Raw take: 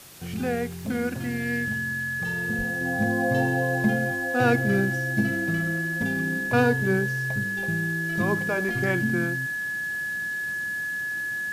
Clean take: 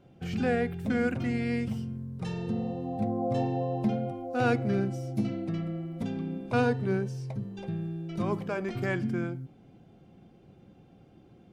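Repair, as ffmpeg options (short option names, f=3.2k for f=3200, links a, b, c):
-filter_complex "[0:a]bandreject=f=1.7k:w=30,asplit=3[a][b][c];[a]afade=t=out:st=2.57:d=0.02[d];[b]highpass=f=140:w=0.5412,highpass=f=140:w=1.3066,afade=t=in:st=2.57:d=0.02,afade=t=out:st=2.69:d=0.02[e];[c]afade=t=in:st=2.69:d=0.02[f];[d][e][f]amix=inputs=3:normalize=0,afwtdn=0.005,asetnsamples=n=441:p=0,asendcmd='2.81 volume volume -4.5dB',volume=0dB"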